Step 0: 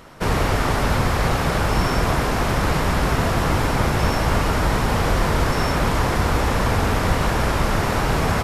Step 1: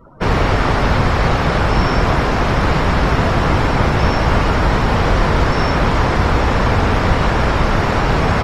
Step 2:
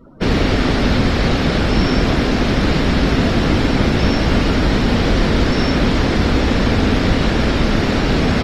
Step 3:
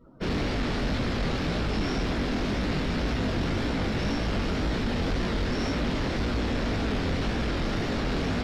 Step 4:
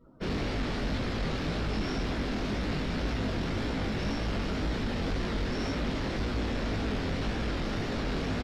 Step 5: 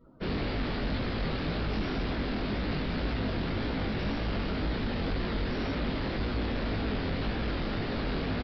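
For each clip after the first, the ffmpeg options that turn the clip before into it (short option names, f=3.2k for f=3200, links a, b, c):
-filter_complex "[0:a]afftdn=nr=31:nf=-40,acrossover=split=6300[a][b];[b]acompressor=threshold=-54dB:ratio=4:attack=1:release=60[c];[a][c]amix=inputs=2:normalize=0,volume=5dB"
-af "equalizer=f=125:t=o:w=1:g=-3,equalizer=f=250:t=o:w=1:g=8,equalizer=f=1k:t=o:w=1:g=-8,equalizer=f=4k:t=o:w=1:g=6,volume=-1dB"
-af "flanger=delay=16.5:depth=7.9:speed=1.9,asoftclip=type=tanh:threshold=-14dB,volume=-7dB"
-filter_complex "[0:a]asplit=2[a][b];[b]adelay=19,volume=-13dB[c];[a][c]amix=inputs=2:normalize=0,volume=-4dB"
-af "aresample=11025,aresample=44100"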